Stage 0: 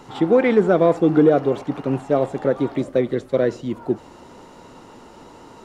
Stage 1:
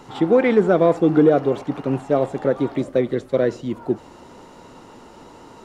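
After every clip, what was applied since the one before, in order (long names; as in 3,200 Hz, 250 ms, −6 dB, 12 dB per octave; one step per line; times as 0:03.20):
no processing that can be heard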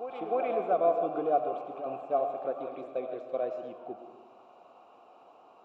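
formant filter a
backwards echo 308 ms −9.5 dB
on a send at −7.5 dB: convolution reverb RT60 1.4 s, pre-delay 60 ms
on the sum: level −1.5 dB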